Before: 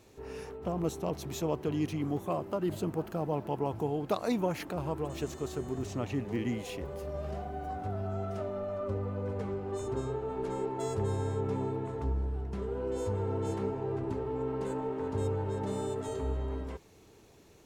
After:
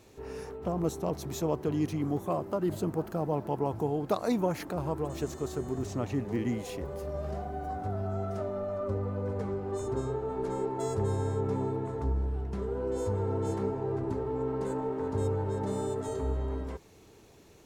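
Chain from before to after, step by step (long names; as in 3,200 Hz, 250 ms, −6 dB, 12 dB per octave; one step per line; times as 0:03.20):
dynamic equaliser 2,800 Hz, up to −6 dB, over −60 dBFS, Q 1.7
level +2 dB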